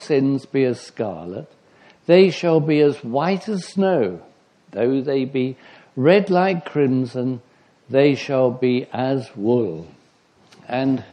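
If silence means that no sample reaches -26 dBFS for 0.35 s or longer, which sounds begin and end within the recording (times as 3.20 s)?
2.09–4.15 s
4.76–5.52 s
5.98–7.36 s
7.92–9.80 s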